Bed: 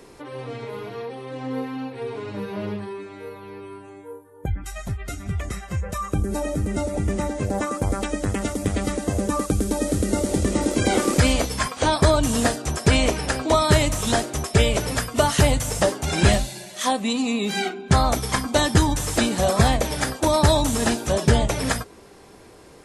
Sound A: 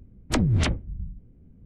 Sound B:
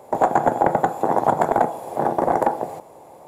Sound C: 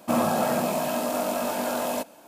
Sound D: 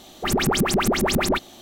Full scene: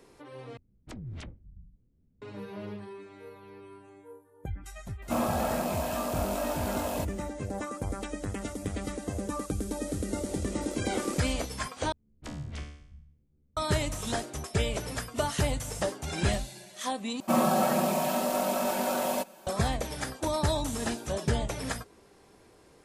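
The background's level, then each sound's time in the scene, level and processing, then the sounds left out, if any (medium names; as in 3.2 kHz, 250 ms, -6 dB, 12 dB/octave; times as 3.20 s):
bed -10.5 dB
0.57 s: replace with A -16.5 dB + peak limiter -17 dBFS
5.02 s: add C -5.5 dB
11.92 s: replace with A -6 dB + feedback comb 73 Hz, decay 0.67 s, mix 90%
17.20 s: replace with C -3 dB + comb 5.3 ms, depth 76%
not used: B, D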